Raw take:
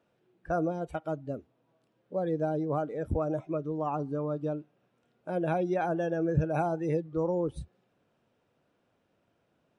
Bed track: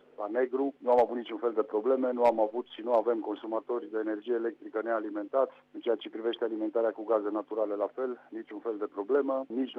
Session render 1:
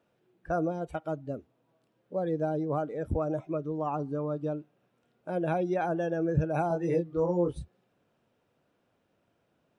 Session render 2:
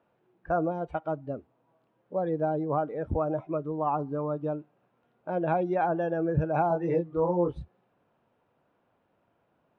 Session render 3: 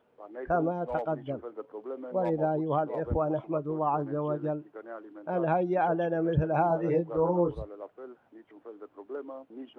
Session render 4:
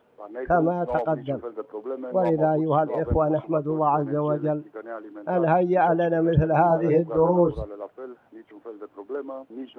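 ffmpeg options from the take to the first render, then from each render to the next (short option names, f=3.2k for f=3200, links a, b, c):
-filter_complex "[0:a]asettb=1/sr,asplit=3[a][b][c];[a]atrim=end=6.684[d];[b]atrim=start=6.68:end=7.58,asetpts=PTS-STARTPTS,afade=t=in:d=0.004:c=qsin,afade=t=out:st=0.896:d=0.004:c=qsin,asplit=2[e][f];[f]adelay=23,volume=-2.5dB[g];[e][g]amix=inputs=2:normalize=0,atrim=end_sample=39690[h];[c]atrim=start=7.576[i];[d][h]acrossfade=d=0.004:c1=hsin:c2=qsin[j];[j][i]acrossfade=d=0.004:c1=qsin:c2=hsin"
-af "lowpass=2.9k,equalizer=f=930:w=1.5:g=6.5"
-filter_complex "[1:a]volume=-11.5dB[a];[0:a][a]amix=inputs=2:normalize=0"
-af "volume=6.5dB"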